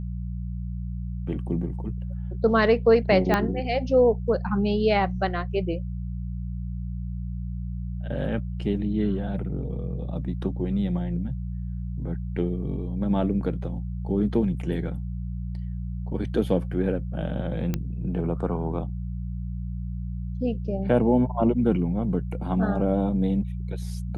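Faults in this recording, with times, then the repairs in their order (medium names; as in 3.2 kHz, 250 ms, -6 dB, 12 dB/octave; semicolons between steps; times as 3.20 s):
hum 60 Hz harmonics 3 -31 dBFS
3.34 s: pop -9 dBFS
17.74 s: pop -13 dBFS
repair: de-click; de-hum 60 Hz, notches 3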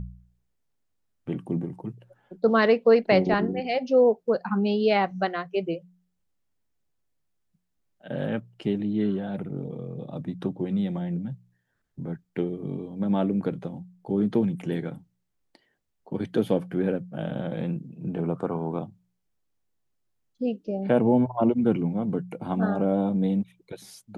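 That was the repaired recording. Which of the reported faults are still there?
3.34 s: pop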